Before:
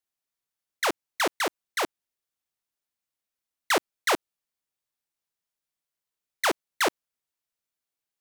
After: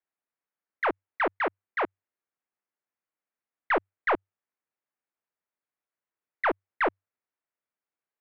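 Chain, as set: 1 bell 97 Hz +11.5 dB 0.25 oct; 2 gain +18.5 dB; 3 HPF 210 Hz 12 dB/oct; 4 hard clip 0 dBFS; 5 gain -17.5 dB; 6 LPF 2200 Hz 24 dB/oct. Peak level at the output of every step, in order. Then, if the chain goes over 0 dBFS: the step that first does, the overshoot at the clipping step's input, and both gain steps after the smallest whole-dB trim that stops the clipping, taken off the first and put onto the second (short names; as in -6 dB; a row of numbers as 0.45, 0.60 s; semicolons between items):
-15.5, +3.0, +7.5, 0.0, -17.5, -16.0 dBFS; step 2, 7.5 dB; step 2 +10.5 dB, step 5 -9.5 dB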